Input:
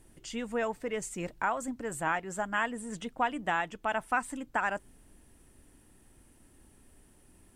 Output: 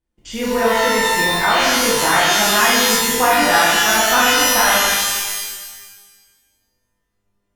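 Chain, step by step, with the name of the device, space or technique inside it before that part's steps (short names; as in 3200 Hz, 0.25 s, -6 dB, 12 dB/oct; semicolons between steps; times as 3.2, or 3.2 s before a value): lo-fi chain (LPF 5800 Hz; wow and flutter 11 cents; crackle); gate -51 dBFS, range -32 dB; shimmer reverb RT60 1.3 s, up +12 st, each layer -2 dB, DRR -7.5 dB; gain +6.5 dB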